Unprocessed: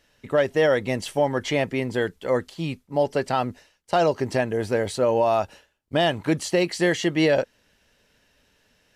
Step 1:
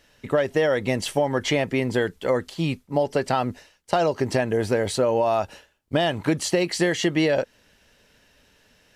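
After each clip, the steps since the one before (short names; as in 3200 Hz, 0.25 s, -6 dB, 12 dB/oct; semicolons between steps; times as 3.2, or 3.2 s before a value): compressor, threshold -22 dBFS, peak gain reduction 7 dB; gain +4.5 dB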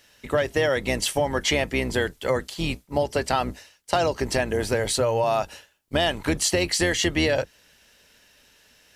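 octaver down 2 oct, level +1 dB; tilt +2 dB/oct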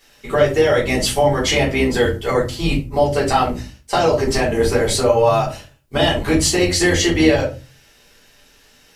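shoebox room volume 140 m³, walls furnished, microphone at 3.5 m; gain -1.5 dB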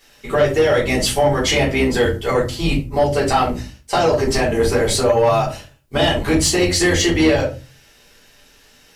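soft clip -7 dBFS, distortion -20 dB; gain +1 dB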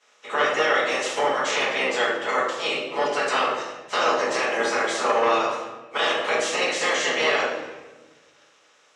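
spectral limiter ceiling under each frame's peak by 20 dB; speaker cabinet 480–6700 Hz, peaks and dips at 500 Hz +8 dB, 1200 Hz +6 dB, 4600 Hz -9 dB; shoebox room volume 790 m³, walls mixed, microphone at 1.4 m; gain -8.5 dB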